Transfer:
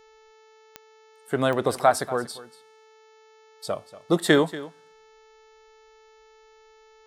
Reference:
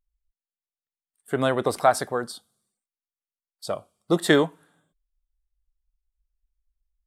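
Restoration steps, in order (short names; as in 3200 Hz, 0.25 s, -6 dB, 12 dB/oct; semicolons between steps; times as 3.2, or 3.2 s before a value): de-click; de-hum 438.5 Hz, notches 16; inverse comb 0.236 s -17 dB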